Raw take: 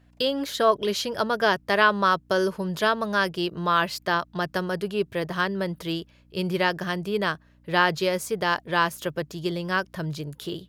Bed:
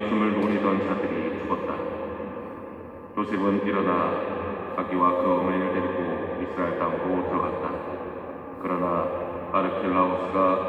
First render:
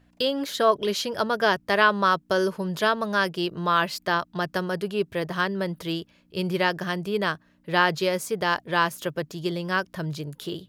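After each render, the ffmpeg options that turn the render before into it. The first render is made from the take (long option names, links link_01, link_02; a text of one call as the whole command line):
ffmpeg -i in.wav -af "bandreject=frequency=60:width_type=h:width=4,bandreject=frequency=120:width_type=h:width=4" out.wav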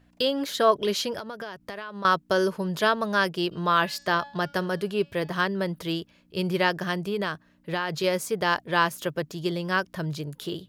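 ffmpeg -i in.wav -filter_complex "[0:a]asettb=1/sr,asplit=3[link_01][link_02][link_03];[link_01]atrim=end=1.184[link_04];[link_02]atrim=start=1.18:end=2.05,asetpts=PTS-STARTPTS,afade=type=in:duration=0.004:curve=qsin,afade=type=out:start_time=0.866:duration=0.004:curve=qsin,acompressor=threshold=-32dB:ratio=16:attack=3.2:release=140:knee=1:detection=peak[link_05];[link_03]atrim=start=2.046[link_06];[link_04][link_05]acrossfade=duration=0.004:curve1=hsin:curve2=qsin[link_07];[link_07][link_06]acrossfade=duration=0.004:curve1=qsin:curve2=hsin,asplit=3[link_08][link_09][link_10];[link_08]afade=type=out:start_time=3.51:duration=0.02[link_11];[link_09]bandreject=frequency=284.3:width_type=h:width=4,bandreject=frequency=568.6:width_type=h:width=4,bandreject=frequency=852.9:width_type=h:width=4,bandreject=frequency=1137.2:width_type=h:width=4,bandreject=frequency=1421.5:width_type=h:width=4,bandreject=frequency=1705.8:width_type=h:width=4,bandreject=frequency=1990.1:width_type=h:width=4,bandreject=frequency=2274.4:width_type=h:width=4,bandreject=frequency=2558.7:width_type=h:width=4,bandreject=frequency=2843:width_type=h:width=4,bandreject=frequency=3127.3:width_type=h:width=4,bandreject=frequency=3411.6:width_type=h:width=4,bandreject=frequency=3695.9:width_type=h:width=4,bandreject=frequency=3980.2:width_type=h:width=4,bandreject=frequency=4264.5:width_type=h:width=4,bandreject=frequency=4548.8:width_type=h:width=4,bandreject=frequency=4833.1:width_type=h:width=4,bandreject=frequency=5117.4:width_type=h:width=4,bandreject=frequency=5401.7:width_type=h:width=4,bandreject=frequency=5686:width_type=h:width=4,bandreject=frequency=5970.3:width_type=h:width=4,bandreject=frequency=6254.6:width_type=h:width=4,bandreject=frequency=6538.9:width_type=h:width=4,bandreject=frequency=6823.2:width_type=h:width=4,bandreject=frequency=7107.5:width_type=h:width=4,bandreject=frequency=7391.8:width_type=h:width=4,bandreject=frequency=7676.1:width_type=h:width=4,bandreject=frequency=7960.4:width_type=h:width=4,bandreject=frequency=8244.7:width_type=h:width=4,bandreject=frequency=8529:width_type=h:width=4,afade=type=in:start_time=3.51:duration=0.02,afade=type=out:start_time=5.4:duration=0.02[link_12];[link_10]afade=type=in:start_time=5.4:duration=0.02[link_13];[link_11][link_12][link_13]amix=inputs=3:normalize=0,asettb=1/sr,asplit=3[link_14][link_15][link_16];[link_14]atrim=end=6.944[link_17];[link_15]atrim=start=6.94:end=8.04,asetpts=PTS-STARTPTS,afade=type=in:duration=0.004:curve=qsin,afade=type=out:start_time=1.096:duration=0.004:curve=qsin,acompressor=threshold=-23dB:ratio=6:attack=3.2:release=140:knee=1:detection=peak[link_18];[link_16]atrim=start=8.036[link_19];[link_17][link_18]acrossfade=duration=0.004:curve1=hsin:curve2=qsin[link_20];[link_20][link_19]acrossfade=duration=0.004:curve1=qsin:curve2=hsin" out.wav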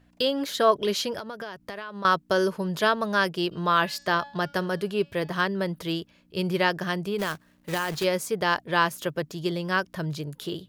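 ffmpeg -i in.wav -filter_complex "[0:a]asplit=3[link_01][link_02][link_03];[link_01]afade=type=out:start_time=7.18:duration=0.02[link_04];[link_02]acrusher=bits=2:mode=log:mix=0:aa=0.000001,afade=type=in:start_time=7.18:duration=0.02,afade=type=out:start_time=8.03:duration=0.02[link_05];[link_03]afade=type=in:start_time=8.03:duration=0.02[link_06];[link_04][link_05][link_06]amix=inputs=3:normalize=0" out.wav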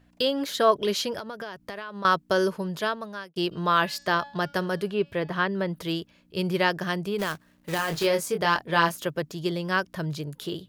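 ffmpeg -i in.wav -filter_complex "[0:a]asettb=1/sr,asplit=3[link_01][link_02][link_03];[link_01]atrim=end=4.864[link_04];[link_02]atrim=start=4.86:end=5.75,asetpts=PTS-STARTPTS,afade=type=in:duration=0.004:curve=qsin,afade=type=out:start_time=0.886:duration=0.004:curve=qsin,acrossover=split=3900[link_05][link_06];[link_06]acompressor=threshold=-57dB:ratio=4:attack=1:release=60[link_07];[link_05][link_07]amix=inputs=2:normalize=0[link_08];[link_03]atrim=start=5.746[link_09];[link_04][link_08]acrossfade=duration=0.004:curve1=hsin:curve2=qsin[link_10];[link_10][link_09]acrossfade=duration=0.004:curve1=qsin:curve2=hsin,asettb=1/sr,asplit=3[link_11][link_12][link_13];[link_11]atrim=end=7.764[link_14];[link_12]atrim=start=7.76:end=8.96,asetpts=PTS-STARTPTS,afade=type=in:duration=0.004:curve=qsin,afade=type=out:start_time=1.196:duration=0.004:curve=qsin,asplit=2[link_15][link_16];[link_16]adelay=24,volume=-5.5dB[link_17];[link_15][link_17]amix=inputs=2:normalize=0,atrim=end_sample=52920[link_18];[link_13]atrim=start=8.956[link_19];[link_14][link_18]acrossfade=duration=0.004:curve1=hsin:curve2=qsin[link_20];[link_20][link_19]acrossfade=duration=0.004:curve1=qsin:curve2=hsin,asplit=2[link_21][link_22];[link_21]atrim=end=3.36,asetpts=PTS-STARTPTS,afade=type=out:start_time=2.48:duration=0.88[link_23];[link_22]atrim=start=3.36,asetpts=PTS-STARTPTS,afade=type=in:duration=0.004:curve=hsin[link_24];[link_23][link_24]concat=n=2:v=0:a=1" out.wav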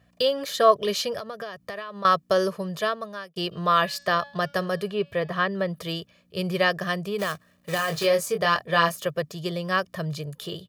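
ffmpeg -i in.wav -af "highpass=86,aecho=1:1:1.7:0.61" out.wav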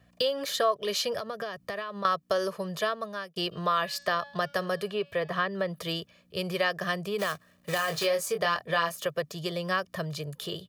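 ffmpeg -i in.wav -filter_complex "[0:a]acrossover=split=400|1300[link_01][link_02][link_03];[link_01]alimiter=level_in=7dB:limit=-24dB:level=0:latency=1:release=425,volume=-7dB[link_04];[link_04][link_02][link_03]amix=inputs=3:normalize=0,acompressor=threshold=-25dB:ratio=2.5" out.wav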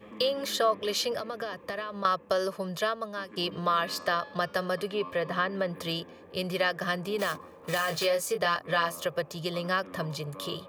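ffmpeg -i in.wav -i bed.wav -filter_complex "[1:a]volume=-22dB[link_01];[0:a][link_01]amix=inputs=2:normalize=0" out.wav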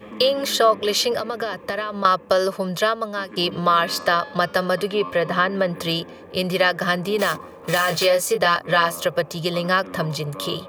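ffmpeg -i in.wav -af "volume=9dB" out.wav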